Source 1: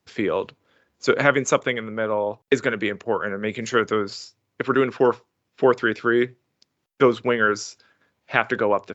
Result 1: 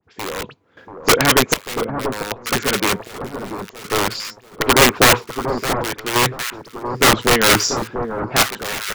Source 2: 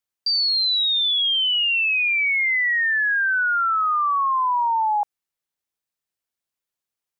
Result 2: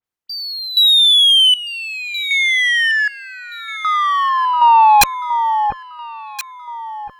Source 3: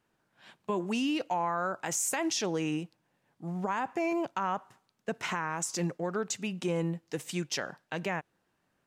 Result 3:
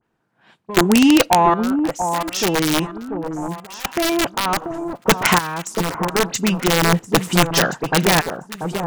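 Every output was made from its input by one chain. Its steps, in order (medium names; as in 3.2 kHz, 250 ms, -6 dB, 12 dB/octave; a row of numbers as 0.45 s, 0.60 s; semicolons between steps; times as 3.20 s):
treble shelf 2.4 kHz -9 dB; band-stop 580 Hz, Q 12; reverse; compression 6:1, threshold -32 dBFS; reverse; phase dispersion highs, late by 44 ms, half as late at 2.9 kHz; Chebyshev shaper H 2 -18 dB, 3 -35 dB, 7 -27 dB, 8 -34 dB, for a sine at -20.5 dBFS; integer overflow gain 29 dB; random-step tremolo 1.3 Hz, depth 95%; on a send: echo whose repeats swap between lows and highs 687 ms, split 1.2 kHz, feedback 51%, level -7 dB; on the sum: peak normalisation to -3 dBFS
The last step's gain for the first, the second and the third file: +25.0 dB, +25.0 dB, +25.5 dB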